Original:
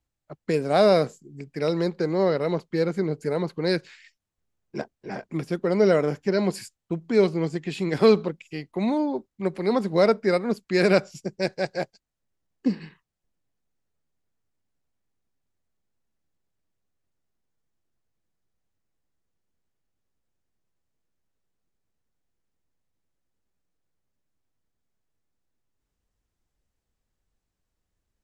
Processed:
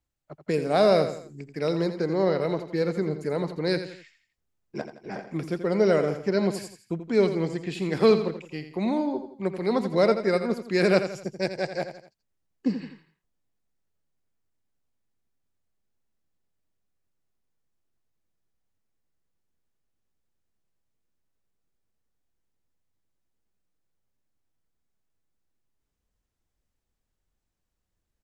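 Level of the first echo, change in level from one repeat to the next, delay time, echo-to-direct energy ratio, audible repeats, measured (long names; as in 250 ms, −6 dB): −10.0 dB, −7.5 dB, 84 ms, −9.0 dB, 3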